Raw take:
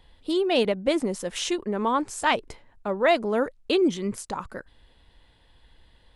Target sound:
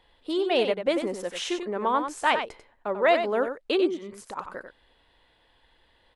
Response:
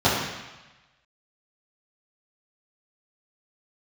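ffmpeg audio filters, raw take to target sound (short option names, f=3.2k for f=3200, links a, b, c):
-filter_complex "[0:a]bass=f=250:g=-12,treble=f=4k:g=-7,asplit=3[a][b][c];[a]afade=t=out:st=3.86:d=0.02[d];[b]acompressor=threshold=-41dB:ratio=2,afade=t=in:st=3.86:d=0.02,afade=t=out:st=4.36:d=0.02[e];[c]afade=t=in:st=4.36:d=0.02[f];[d][e][f]amix=inputs=3:normalize=0,aecho=1:1:93:0.398"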